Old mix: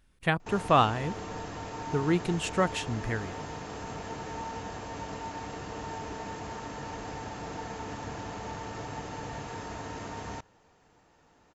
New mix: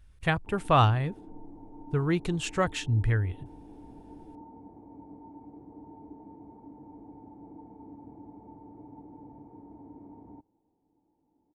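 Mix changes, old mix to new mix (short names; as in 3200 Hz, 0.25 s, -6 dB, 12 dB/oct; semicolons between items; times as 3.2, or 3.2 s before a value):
speech: add resonant low shelf 140 Hz +10 dB, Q 1.5; background: add vocal tract filter u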